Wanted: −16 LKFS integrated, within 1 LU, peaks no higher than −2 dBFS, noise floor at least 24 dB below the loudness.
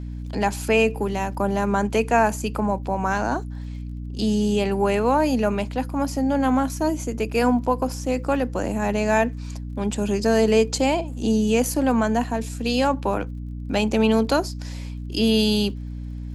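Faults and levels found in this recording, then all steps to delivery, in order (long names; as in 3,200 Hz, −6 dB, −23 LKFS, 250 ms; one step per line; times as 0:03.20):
crackle rate 39 per second; mains hum 60 Hz; hum harmonics up to 300 Hz; level of the hum −29 dBFS; integrated loudness −22.5 LKFS; sample peak −7.0 dBFS; target loudness −16.0 LKFS
→ click removal
mains-hum notches 60/120/180/240/300 Hz
level +6.5 dB
brickwall limiter −2 dBFS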